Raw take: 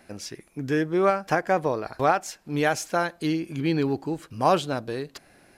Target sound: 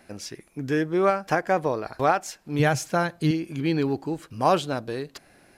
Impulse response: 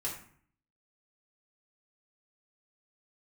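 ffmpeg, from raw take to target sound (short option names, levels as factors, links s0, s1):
-filter_complex "[0:a]asettb=1/sr,asplit=3[s0][s1][s2];[s0]atrim=end=2.594[s3];[s1]atrim=start=2.59:end=3.31,asetpts=PTS-STARTPTS,afade=t=in:d=0.004:c=qsin,afade=t=out:st=0.716:d=0.004:c=qsin,equalizer=f=130:t=o:w=0.8:g=14.5[s4];[s2]atrim=start=3.306[s5];[s3][s4]acrossfade=d=0.004:c1=hsin:c2=qsin[s6];[s6][s5]acrossfade=d=0.004:c1=qsin:c2=hsin"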